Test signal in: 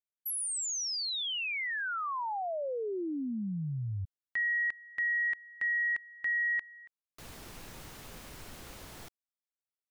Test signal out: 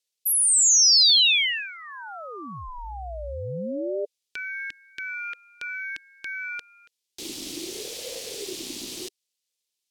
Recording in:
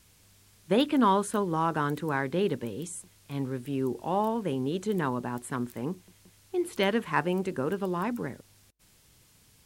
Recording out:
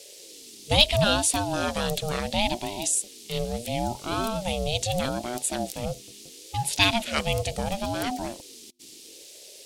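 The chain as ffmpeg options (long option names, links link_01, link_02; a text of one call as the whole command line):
ffmpeg -i in.wav -af "aemphasis=mode=reproduction:type=bsi,aexciter=amount=15:drive=7:freq=2700,aeval=exprs='val(0)*sin(2*PI*400*n/s+400*0.25/0.74*sin(2*PI*0.74*n/s))':channel_layout=same" out.wav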